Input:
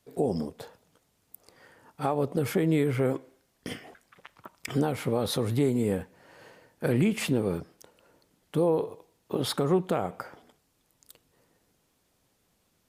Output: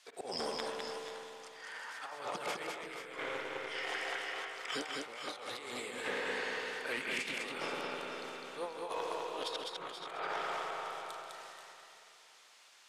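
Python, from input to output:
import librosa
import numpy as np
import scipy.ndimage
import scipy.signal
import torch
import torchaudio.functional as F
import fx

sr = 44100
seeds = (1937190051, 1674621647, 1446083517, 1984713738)

p1 = scipy.signal.sosfilt(scipy.signal.butter(2, 1200.0, 'highpass', fs=sr, output='sos'), x)
p2 = fx.high_shelf(p1, sr, hz=3000.0, db=7.0)
p3 = fx.transient(p2, sr, attack_db=0, sustain_db=8)
p4 = fx.level_steps(p3, sr, step_db=17)
p5 = p3 + (p4 * 10.0 ** (2.5 / 20.0))
p6 = fx.auto_swell(p5, sr, attack_ms=265.0)
p7 = fx.air_absorb(p6, sr, metres=93.0)
p8 = fx.rev_spring(p7, sr, rt60_s=2.9, pass_ms=(47, 56), chirp_ms=60, drr_db=4.5)
p9 = fx.over_compress(p8, sr, threshold_db=-44.0, ratio=-0.5)
p10 = p9 + fx.echo_multitap(p9, sr, ms=(134, 204, 469, 482, 502, 693), db=(-15.0, -3.5, -18.0, -10.5, -13.5, -19.5), dry=0)
p11 = fx.transformer_sat(p10, sr, knee_hz=960.0)
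y = p11 * 10.0 ** (4.5 / 20.0)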